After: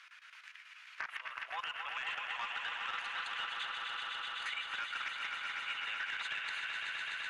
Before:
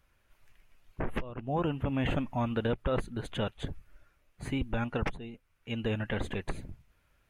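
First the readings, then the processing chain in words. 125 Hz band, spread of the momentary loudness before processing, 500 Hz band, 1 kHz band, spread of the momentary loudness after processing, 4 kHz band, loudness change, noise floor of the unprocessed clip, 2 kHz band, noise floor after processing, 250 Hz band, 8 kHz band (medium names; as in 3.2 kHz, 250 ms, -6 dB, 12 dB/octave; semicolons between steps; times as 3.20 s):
under -35 dB, 14 LU, -24.5 dB, -1.5 dB, 9 LU, +6.0 dB, -4.5 dB, -71 dBFS, +5.5 dB, -57 dBFS, under -35 dB, 0.0 dB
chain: backward echo that repeats 123 ms, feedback 75%, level -11.5 dB; high-pass 1.3 kHz 24 dB/octave; peaking EQ 2.6 kHz +4 dB 2.5 oct; peak limiter -31.5 dBFS, peak gain reduction 11 dB; square tremolo 9.2 Hz, duty 75%; hard clipper -36.5 dBFS, distortion -17 dB; echo with a slow build-up 126 ms, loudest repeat 5, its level -8 dB; gate -60 dBFS, range -7 dB; distance through air 99 m; three bands compressed up and down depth 70%; trim +4.5 dB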